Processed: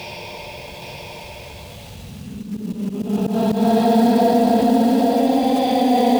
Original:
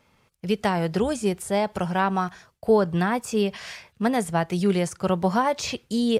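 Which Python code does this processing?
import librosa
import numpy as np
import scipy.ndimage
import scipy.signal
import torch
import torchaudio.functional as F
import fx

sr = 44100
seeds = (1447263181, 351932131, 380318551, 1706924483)

p1 = scipy.signal.sosfilt(scipy.signal.butter(2, 6300.0, 'lowpass', fs=sr, output='sos'), x)
p2 = fx.band_shelf(p1, sr, hz=1500.0, db=-15.0, octaves=1.2)
p3 = fx.level_steps(p2, sr, step_db=22)
p4 = p2 + (p3 * 10.0 ** (-1.5 / 20.0))
p5 = fx.paulstretch(p4, sr, seeds[0], factor=19.0, window_s=0.1, from_s=3.85)
p6 = fx.quant_companded(p5, sr, bits=6)
p7 = fx.auto_swell(p6, sr, attack_ms=122.0)
p8 = p7 + fx.echo_single(p7, sr, ms=820, db=-4.5, dry=0)
y = fx.env_flatten(p8, sr, amount_pct=50)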